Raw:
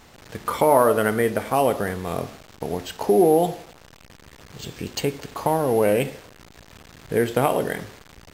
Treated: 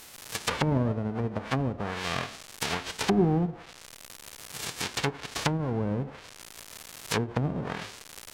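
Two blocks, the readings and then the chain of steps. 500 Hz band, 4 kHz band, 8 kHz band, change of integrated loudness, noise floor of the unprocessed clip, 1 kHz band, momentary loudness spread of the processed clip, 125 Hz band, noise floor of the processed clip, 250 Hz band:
−13.0 dB, +2.0 dB, −2.0 dB, −8.0 dB, −50 dBFS, −10.5 dB, 18 LU, +1.5 dB, −50 dBFS, −3.5 dB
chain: spectral envelope flattened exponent 0.1
treble cut that deepens with the level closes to 380 Hz, closed at −17 dBFS
level +2.5 dB

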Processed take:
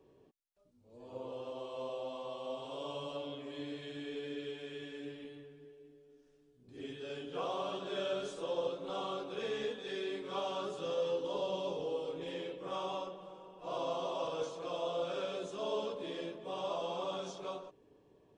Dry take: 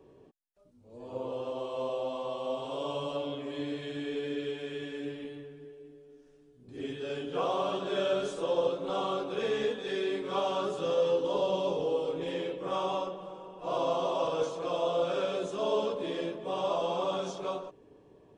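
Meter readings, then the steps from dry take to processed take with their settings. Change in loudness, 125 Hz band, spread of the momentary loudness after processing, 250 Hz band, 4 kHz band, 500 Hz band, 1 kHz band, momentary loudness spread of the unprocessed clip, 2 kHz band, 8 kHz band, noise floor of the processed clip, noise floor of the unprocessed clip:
−7.0 dB, −7.5 dB, 10 LU, −7.5 dB, −4.5 dB, −7.5 dB, −7.0 dB, 10 LU, −6.0 dB, can't be measured, −67 dBFS, −60 dBFS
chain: parametric band 4,400 Hz +3.5 dB 1.9 octaves
level −7.5 dB

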